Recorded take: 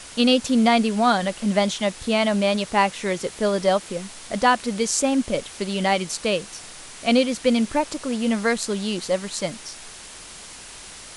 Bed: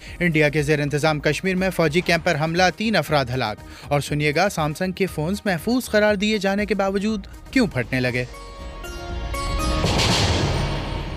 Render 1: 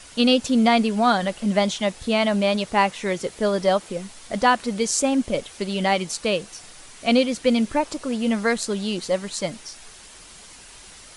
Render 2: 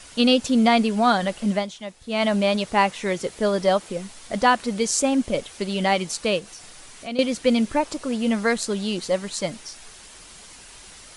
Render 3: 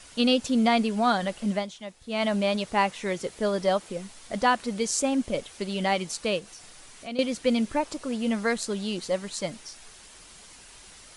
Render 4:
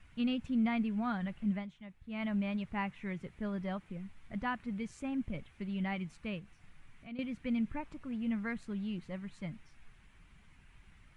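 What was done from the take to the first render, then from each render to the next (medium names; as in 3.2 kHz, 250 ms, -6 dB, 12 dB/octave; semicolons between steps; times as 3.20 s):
noise reduction 6 dB, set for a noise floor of -41 dBFS
1.50–2.24 s: dip -11.5 dB, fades 0.17 s; 6.39–7.19 s: compression 2:1, threshold -38 dBFS
trim -4.5 dB
FFT filter 150 Hz 0 dB, 520 Hz -21 dB, 890 Hz -15 dB, 2.3 kHz -10 dB, 4.8 kHz -30 dB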